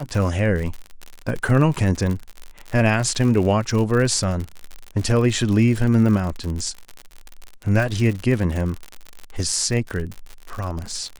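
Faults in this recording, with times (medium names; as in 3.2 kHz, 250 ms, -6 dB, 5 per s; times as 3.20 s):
crackle 65 per s -25 dBFS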